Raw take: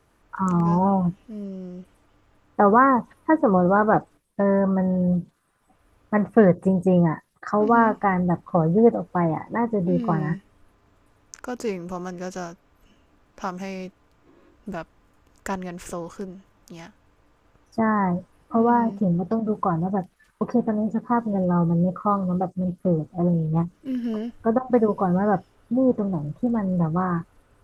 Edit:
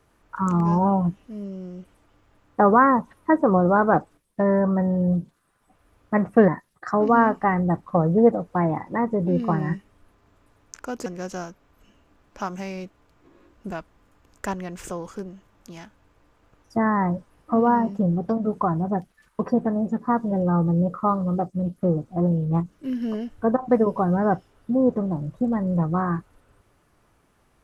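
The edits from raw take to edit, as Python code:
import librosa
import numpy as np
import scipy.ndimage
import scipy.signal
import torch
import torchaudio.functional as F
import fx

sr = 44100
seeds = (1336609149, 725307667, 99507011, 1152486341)

y = fx.edit(x, sr, fx.cut(start_s=6.48, length_s=0.6),
    fx.cut(start_s=11.66, length_s=0.42), tone=tone)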